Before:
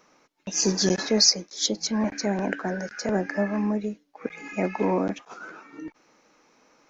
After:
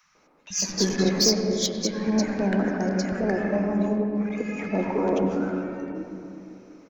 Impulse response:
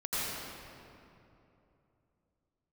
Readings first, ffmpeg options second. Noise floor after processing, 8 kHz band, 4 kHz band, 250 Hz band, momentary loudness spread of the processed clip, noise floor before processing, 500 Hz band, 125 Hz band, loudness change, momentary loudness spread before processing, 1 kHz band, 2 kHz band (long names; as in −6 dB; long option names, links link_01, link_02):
−61 dBFS, can't be measured, −2.5 dB, +3.5 dB, 13 LU, −65 dBFS, +2.5 dB, +3.5 dB, 0.0 dB, 22 LU, +0.5 dB, −0.5 dB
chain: -filter_complex "[0:a]asoftclip=type=tanh:threshold=-15dB,acrossover=split=150|1100[link_01][link_02][link_03];[link_01]adelay=30[link_04];[link_02]adelay=150[link_05];[link_04][link_05][link_03]amix=inputs=3:normalize=0,asplit=2[link_06][link_07];[1:a]atrim=start_sample=2205,lowpass=2400,lowshelf=frequency=270:gain=7[link_08];[link_07][link_08]afir=irnorm=-1:irlink=0,volume=-9.5dB[link_09];[link_06][link_09]amix=inputs=2:normalize=0"